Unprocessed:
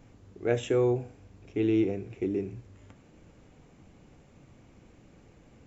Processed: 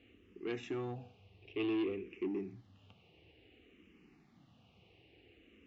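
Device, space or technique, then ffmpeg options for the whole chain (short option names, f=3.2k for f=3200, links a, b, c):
barber-pole phaser into a guitar amplifier: -filter_complex "[0:a]asplit=2[a][b];[b]afreqshift=-0.56[c];[a][c]amix=inputs=2:normalize=1,asoftclip=type=tanh:threshold=-28dB,highpass=85,equalizer=f=130:t=q:w=4:g=-5,equalizer=f=370:t=q:w=4:g=3,equalizer=f=570:t=q:w=4:g=-10,equalizer=f=970:t=q:w=4:g=-9,equalizer=f=1.5k:t=q:w=4:g=-9,equalizer=f=2.8k:t=q:w=4:g=9,lowpass=f=4.4k:w=0.5412,lowpass=f=4.4k:w=1.3066,equalizer=f=140:w=0.4:g=-5.5"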